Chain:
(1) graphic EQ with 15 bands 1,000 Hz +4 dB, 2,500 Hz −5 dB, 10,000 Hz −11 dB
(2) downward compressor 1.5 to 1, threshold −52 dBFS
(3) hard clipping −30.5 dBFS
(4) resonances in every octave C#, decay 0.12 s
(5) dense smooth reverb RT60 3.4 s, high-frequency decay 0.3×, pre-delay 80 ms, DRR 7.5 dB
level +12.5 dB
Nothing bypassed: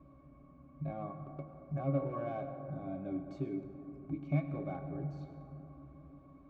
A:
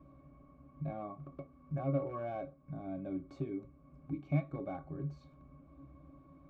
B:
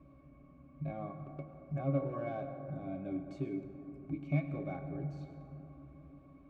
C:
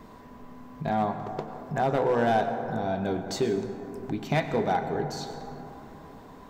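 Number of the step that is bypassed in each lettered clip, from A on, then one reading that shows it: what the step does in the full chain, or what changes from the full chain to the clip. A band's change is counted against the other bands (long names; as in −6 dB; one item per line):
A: 5, change in momentary loudness spread +3 LU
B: 1, 2 kHz band +3.0 dB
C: 4, 125 Hz band −12.5 dB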